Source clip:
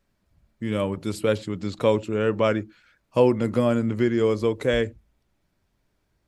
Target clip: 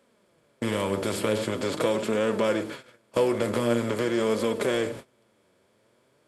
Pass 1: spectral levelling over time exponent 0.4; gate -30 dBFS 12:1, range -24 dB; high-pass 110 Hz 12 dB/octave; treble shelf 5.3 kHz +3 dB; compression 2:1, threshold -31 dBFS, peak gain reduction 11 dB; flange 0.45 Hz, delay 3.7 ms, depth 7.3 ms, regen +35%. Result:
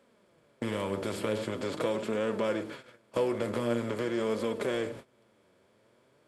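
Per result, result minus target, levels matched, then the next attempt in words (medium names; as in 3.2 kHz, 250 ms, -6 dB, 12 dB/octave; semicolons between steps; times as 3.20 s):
compression: peak gain reduction +5.5 dB; 8 kHz band -4.0 dB
spectral levelling over time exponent 0.4; gate -30 dBFS 12:1, range -24 dB; high-pass 110 Hz 12 dB/octave; treble shelf 5.3 kHz +3 dB; compression 2:1, threshold -20 dBFS, peak gain reduction 5.5 dB; flange 0.45 Hz, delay 3.7 ms, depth 7.3 ms, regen +35%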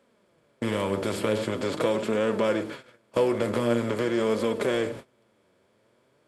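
8 kHz band -4.0 dB
spectral levelling over time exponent 0.4; gate -30 dBFS 12:1, range -24 dB; high-pass 110 Hz 12 dB/octave; treble shelf 5.3 kHz +9 dB; compression 2:1, threshold -20 dBFS, peak gain reduction 5.5 dB; flange 0.45 Hz, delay 3.7 ms, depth 7.3 ms, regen +35%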